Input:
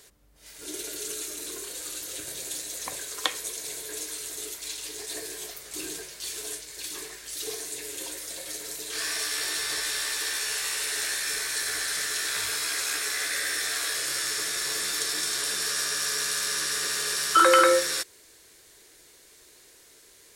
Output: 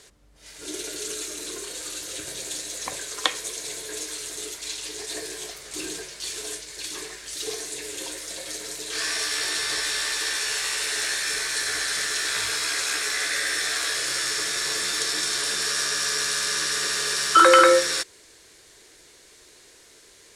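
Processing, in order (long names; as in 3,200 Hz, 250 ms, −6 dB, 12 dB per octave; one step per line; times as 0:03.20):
low-pass filter 8,700 Hz 12 dB per octave
level +4 dB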